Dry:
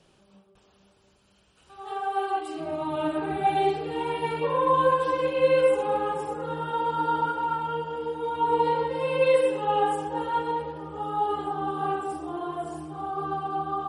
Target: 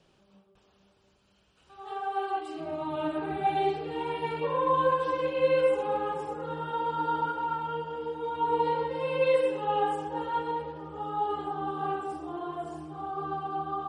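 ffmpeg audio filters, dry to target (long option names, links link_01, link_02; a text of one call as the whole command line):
ffmpeg -i in.wav -af "lowpass=6900,volume=-3.5dB" out.wav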